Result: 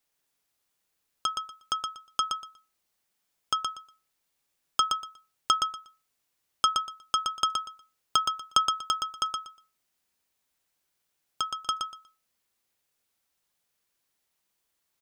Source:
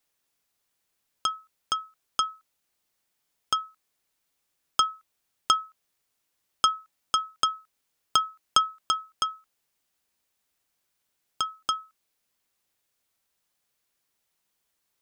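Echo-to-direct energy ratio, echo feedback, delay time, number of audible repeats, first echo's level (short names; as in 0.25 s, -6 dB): -5.0 dB, 19%, 0.12 s, 3, -5.0 dB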